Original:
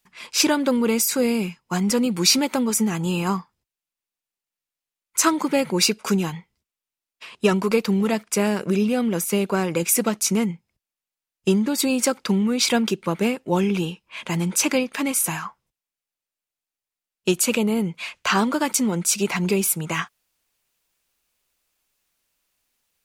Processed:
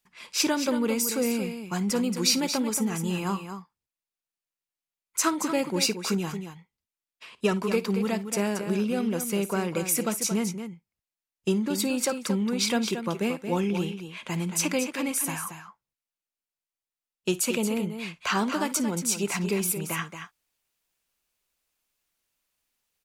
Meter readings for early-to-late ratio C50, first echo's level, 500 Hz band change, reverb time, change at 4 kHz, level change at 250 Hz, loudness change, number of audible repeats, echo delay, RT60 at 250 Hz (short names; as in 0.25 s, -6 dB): none, -18.5 dB, -5.5 dB, none, -5.5 dB, -5.5 dB, -5.5 dB, 2, 55 ms, none